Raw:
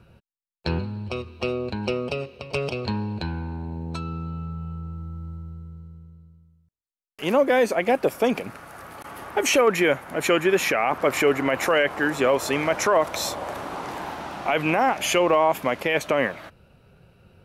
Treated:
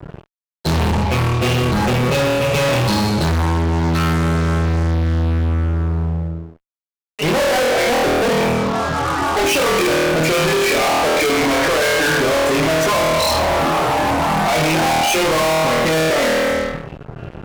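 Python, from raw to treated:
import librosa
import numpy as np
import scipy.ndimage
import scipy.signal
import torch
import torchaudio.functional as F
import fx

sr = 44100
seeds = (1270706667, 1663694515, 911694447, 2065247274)

y = fx.low_shelf(x, sr, hz=220.0, db=-8.0, at=(7.27, 7.91))
y = fx.room_flutter(y, sr, wall_m=4.3, rt60_s=1.0)
y = fx.spec_topn(y, sr, count=32)
y = fx.peak_eq(y, sr, hz=140.0, db=13.0, octaves=0.29)
y = fx.fuzz(y, sr, gain_db=38.0, gate_db=-46.0)
y = F.gain(torch.from_numpy(y), -2.0).numpy()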